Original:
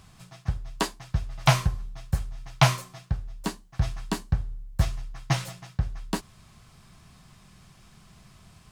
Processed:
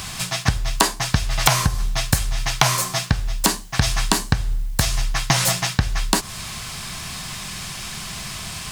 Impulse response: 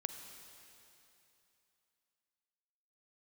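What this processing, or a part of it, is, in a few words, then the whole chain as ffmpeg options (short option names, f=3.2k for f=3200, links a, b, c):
mastering chain: -filter_complex "[0:a]equalizer=f=1.3k:t=o:w=0.32:g=-3,acrossover=split=1800|3900[a][b][c];[a]acompressor=threshold=-26dB:ratio=4[d];[b]acompressor=threshold=-54dB:ratio=4[e];[c]acompressor=threshold=-43dB:ratio=4[f];[d][e][f]amix=inputs=3:normalize=0,acompressor=threshold=-32dB:ratio=3,tiltshelf=f=930:g=-6.5,asoftclip=type=hard:threshold=-19.5dB,alimiter=level_in=23.5dB:limit=-1dB:release=50:level=0:latency=1,volume=-1dB"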